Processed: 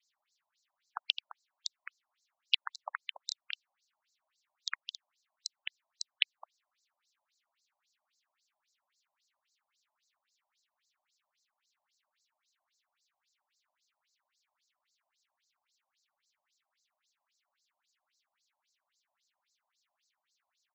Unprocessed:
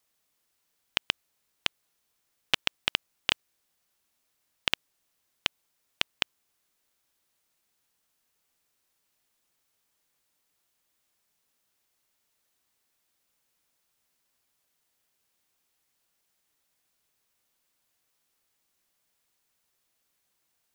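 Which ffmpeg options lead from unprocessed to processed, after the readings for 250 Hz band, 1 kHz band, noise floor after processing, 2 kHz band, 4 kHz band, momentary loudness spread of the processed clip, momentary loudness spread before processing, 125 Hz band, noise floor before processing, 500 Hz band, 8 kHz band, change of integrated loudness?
under -40 dB, -5.5 dB, under -85 dBFS, -7.5 dB, -5.5 dB, 15 LU, 5 LU, under -40 dB, -77 dBFS, -15.0 dB, -4.0 dB, -6.5 dB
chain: -filter_complex "[0:a]aecho=1:1:213:0.237,asplit=2[a][b];[b]acompressor=threshold=-32dB:ratio=6,volume=2.5dB[c];[a][c]amix=inputs=2:normalize=0,afftfilt=real='re*between(b*sr/1024,750*pow(5700/750,0.5+0.5*sin(2*PI*3.7*pts/sr))/1.41,750*pow(5700/750,0.5+0.5*sin(2*PI*3.7*pts/sr))*1.41)':imag='im*between(b*sr/1024,750*pow(5700/750,0.5+0.5*sin(2*PI*3.7*pts/sr))/1.41,750*pow(5700/750,0.5+0.5*sin(2*PI*3.7*pts/sr))*1.41)':win_size=1024:overlap=0.75,volume=-3dB"

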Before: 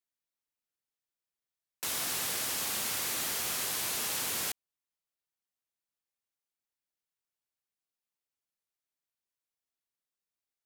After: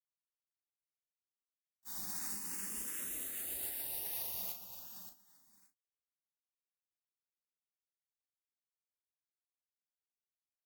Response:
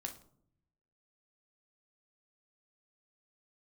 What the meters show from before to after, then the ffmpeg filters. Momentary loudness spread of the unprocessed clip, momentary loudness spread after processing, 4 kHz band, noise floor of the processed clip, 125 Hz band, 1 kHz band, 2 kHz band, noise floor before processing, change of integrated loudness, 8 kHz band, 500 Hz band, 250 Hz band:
4 LU, 10 LU, -16.0 dB, under -85 dBFS, -10.5 dB, -15.0 dB, -15.0 dB, under -85 dBFS, -8.0 dB, -9.5 dB, -12.5 dB, -7.5 dB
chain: -filter_complex "[0:a]flanger=delay=5:depth=6.4:regen=41:speed=0.99:shape=triangular,agate=range=-51dB:threshold=-34dB:ratio=16:detection=peak,lowshelf=f=140:t=q:w=3:g=-13.5,bandreject=f=1.1k:w=6.4,aecho=1:1:572|1144:0.355|0.0532[a];[1:a]atrim=start_sample=2205,atrim=end_sample=3528[b];[a][b]afir=irnorm=-1:irlink=0,asplit=2[c][d];[d]acrusher=samples=16:mix=1:aa=0.000001:lfo=1:lforange=16:lforate=2.6,volume=-3.5dB[e];[c][e]amix=inputs=2:normalize=0,aemphasis=mode=production:type=50fm,asplit=2[f][g];[g]afreqshift=0.29[h];[f][h]amix=inputs=2:normalize=1,volume=7.5dB"

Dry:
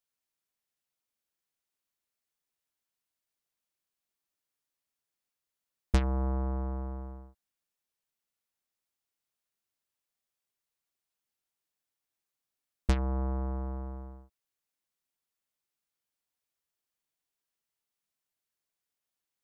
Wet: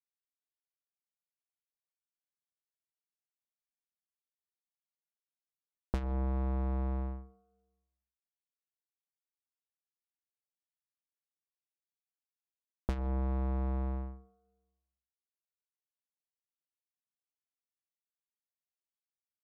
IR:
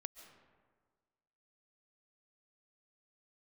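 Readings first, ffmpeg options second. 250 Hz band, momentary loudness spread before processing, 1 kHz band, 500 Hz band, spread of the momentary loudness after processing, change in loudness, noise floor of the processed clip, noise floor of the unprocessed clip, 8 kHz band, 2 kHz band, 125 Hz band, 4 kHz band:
-2.0 dB, 15 LU, -3.0 dB, -2.5 dB, 10 LU, -2.5 dB, under -85 dBFS, under -85 dBFS, n/a, -7.0 dB, -2.0 dB, -11.5 dB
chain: -filter_complex "[0:a]agate=range=-33dB:threshold=-40dB:ratio=3:detection=peak,acompressor=threshold=-36dB:ratio=16,lowpass=5.6k,asplit=2[a][b];[1:a]atrim=start_sample=2205,asetrate=61740,aresample=44100[c];[b][c]afir=irnorm=-1:irlink=0,volume=7dB[d];[a][d]amix=inputs=2:normalize=0,adynamicsmooth=sensitivity=7:basefreq=1.1k"

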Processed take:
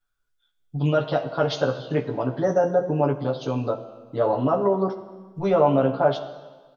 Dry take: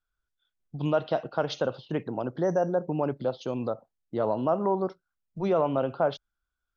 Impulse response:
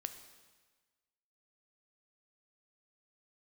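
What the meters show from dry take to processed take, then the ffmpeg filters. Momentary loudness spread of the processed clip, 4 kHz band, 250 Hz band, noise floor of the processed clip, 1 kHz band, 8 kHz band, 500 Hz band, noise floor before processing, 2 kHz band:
12 LU, +5.5 dB, +5.0 dB, -72 dBFS, +5.5 dB, n/a, +5.5 dB, -85 dBFS, +6.0 dB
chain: -filter_complex "[0:a]asplit=2[a][b];[b]adelay=15,volume=-5dB[c];[a][c]amix=inputs=2:normalize=0,asplit=2[d][e];[1:a]atrim=start_sample=2205,adelay=7[f];[e][f]afir=irnorm=-1:irlink=0,volume=6dB[g];[d][g]amix=inputs=2:normalize=0,volume=-1dB"

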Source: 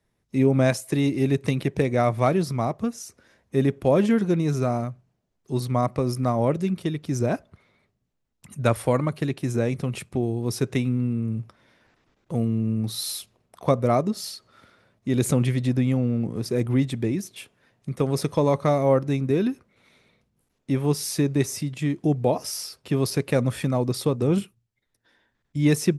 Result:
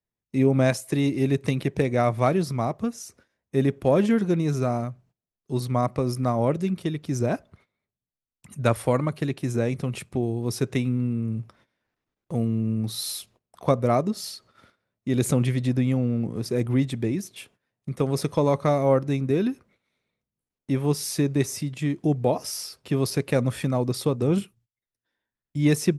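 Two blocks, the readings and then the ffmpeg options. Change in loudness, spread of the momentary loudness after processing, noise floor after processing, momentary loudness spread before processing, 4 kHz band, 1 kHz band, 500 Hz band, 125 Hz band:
-0.5 dB, 10 LU, under -85 dBFS, 10 LU, -1.0 dB, -0.5 dB, -0.5 dB, -0.5 dB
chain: -af "aeval=exprs='0.531*(cos(1*acos(clip(val(0)/0.531,-1,1)))-cos(1*PI/2))+0.0168*(cos(3*acos(clip(val(0)/0.531,-1,1)))-cos(3*PI/2))':c=same,agate=range=-17dB:threshold=-55dB:ratio=16:detection=peak"

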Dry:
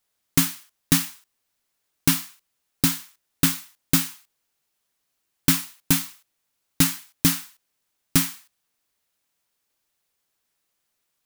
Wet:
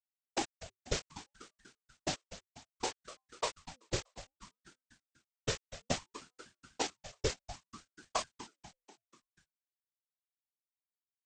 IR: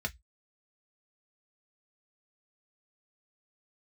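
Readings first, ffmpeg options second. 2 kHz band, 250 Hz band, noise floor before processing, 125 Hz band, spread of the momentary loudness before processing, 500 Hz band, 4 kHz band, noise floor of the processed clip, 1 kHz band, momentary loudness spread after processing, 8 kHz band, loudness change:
-13.0 dB, -21.0 dB, -77 dBFS, -17.5 dB, 11 LU, +2.0 dB, -13.0 dB, under -85 dBFS, -3.5 dB, 18 LU, -17.0 dB, -17.0 dB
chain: -filter_complex "[0:a]aresample=16000,acrusher=bits=3:mix=0:aa=0.000001,aresample=44100,afftfilt=real='hypot(re,im)*cos(2*PI*random(0))':imag='hypot(re,im)*sin(2*PI*random(1))':win_size=512:overlap=0.75,asplit=6[a][b][c][d][e][f];[b]adelay=244,afreqshift=130,volume=-14.5dB[g];[c]adelay=488,afreqshift=260,volume=-20dB[h];[d]adelay=732,afreqshift=390,volume=-25.5dB[i];[e]adelay=976,afreqshift=520,volume=-31dB[j];[f]adelay=1220,afreqshift=650,volume=-36.6dB[k];[a][g][h][i][j][k]amix=inputs=6:normalize=0,aeval=exprs='val(0)*sin(2*PI*570*n/s+570*0.6/0.62*sin(2*PI*0.62*n/s))':c=same,volume=-5dB"

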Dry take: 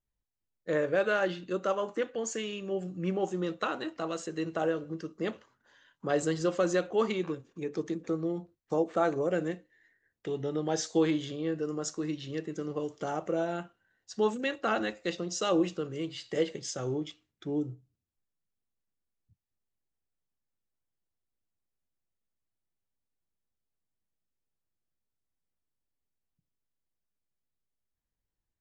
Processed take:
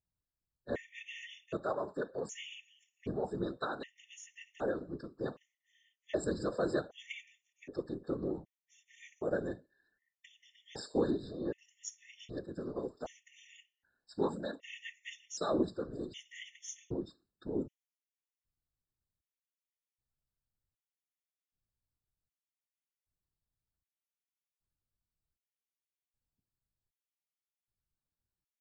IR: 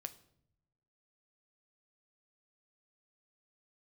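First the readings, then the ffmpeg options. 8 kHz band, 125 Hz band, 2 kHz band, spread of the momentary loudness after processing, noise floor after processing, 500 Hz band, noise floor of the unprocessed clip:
-8.0 dB, -7.5 dB, -9.5 dB, 16 LU, under -85 dBFS, -7.5 dB, under -85 dBFS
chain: -af "afftfilt=real='hypot(re,im)*cos(2*PI*random(0))':imag='hypot(re,im)*sin(2*PI*random(1))':win_size=512:overlap=0.75,afftfilt=real='re*gt(sin(2*PI*0.65*pts/sr)*(1-2*mod(floor(b*sr/1024/1800),2)),0)':imag='im*gt(sin(2*PI*0.65*pts/sr)*(1-2*mod(floor(b*sr/1024/1800),2)),0)':win_size=1024:overlap=0.75,volume=1dB"

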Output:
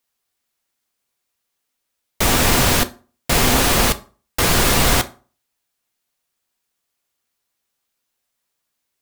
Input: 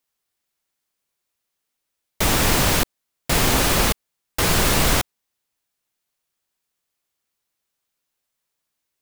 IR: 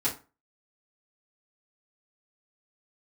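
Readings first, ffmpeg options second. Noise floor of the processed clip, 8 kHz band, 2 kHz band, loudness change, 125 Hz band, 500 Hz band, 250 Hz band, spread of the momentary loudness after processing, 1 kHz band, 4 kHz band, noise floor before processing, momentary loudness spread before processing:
-77 dBFS, +3.0 dB, +3.0 dB, +3.0 dB, +2.0 dB, +3.0 dB, +3.0 dB, 12 LU, +3.0 dB, +3.0 dB, -80 dBFS, 13 LU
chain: -filter_complex "[0:a]asplit=2[a][b];[1:a]atrim=start_sample=2205,asetrate=37044,aresample=44100,lowshelf=f=180:g=-9[c];[b][c]afir=irnorm=-1:irlink=0,volume=-16dB[d];[a][d]amix=inputs=2:normalize=0,volume=1.5dB"

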